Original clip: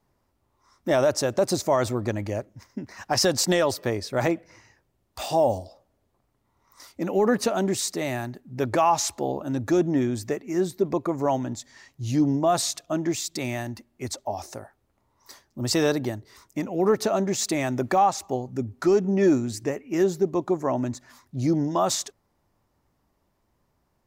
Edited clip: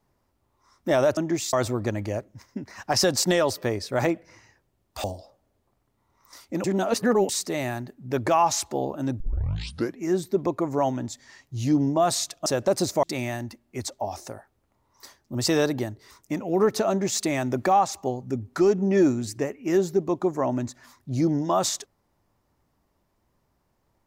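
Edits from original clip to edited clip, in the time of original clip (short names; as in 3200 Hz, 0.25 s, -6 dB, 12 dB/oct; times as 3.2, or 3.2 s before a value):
1.17–1.74 swap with 12.93–13.29
5.25–5.51 cut
7.11–7.76 reverse
9.67 tape start 0.80 s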